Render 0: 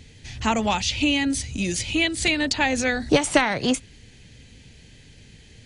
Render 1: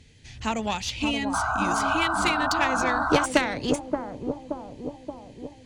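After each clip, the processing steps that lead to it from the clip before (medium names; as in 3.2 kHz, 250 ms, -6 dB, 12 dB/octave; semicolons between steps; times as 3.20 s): Chebyshev shaper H 2 -15 dB, 3 -15 dB, 4 -17 dB, 6 -23 dB, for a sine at -4.5 dBFS; bucket-brigade echo 576 ms, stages 4096, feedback 60%, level -5 dB; painted sound noise, 1.33–3.26 s, 620–1600 Hz -26 dBFS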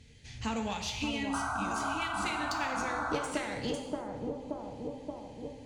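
compression 3:1, threshold -29 dBFS, peak gain reduction 11.5 dB; gated-style reverb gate 340 ms falling, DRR 3 dB; trim -4.5 dB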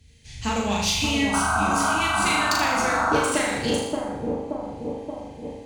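treble shelf 9.6 kHz +11.5 dB; on a send: flutter echo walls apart 6.7 m, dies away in 0.74 s; on the sum: three bands expanded up and down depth 40%; trim +8.5 dB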